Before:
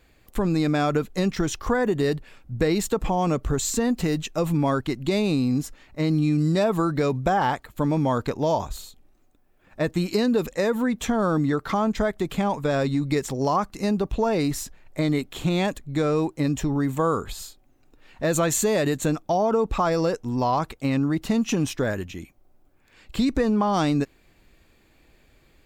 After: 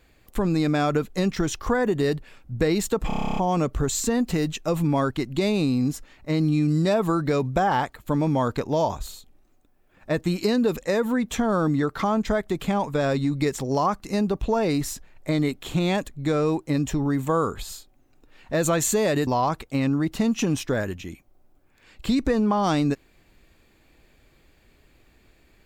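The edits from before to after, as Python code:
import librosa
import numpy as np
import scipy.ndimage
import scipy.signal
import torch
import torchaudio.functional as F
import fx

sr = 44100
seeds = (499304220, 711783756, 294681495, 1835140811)

y = fx.edit(x, sr, fx.stutter(start_s=3.07, slice_s=0.03, count=11),
    fx.cut(start_s=18.97, length_s=1.4), tone=tone)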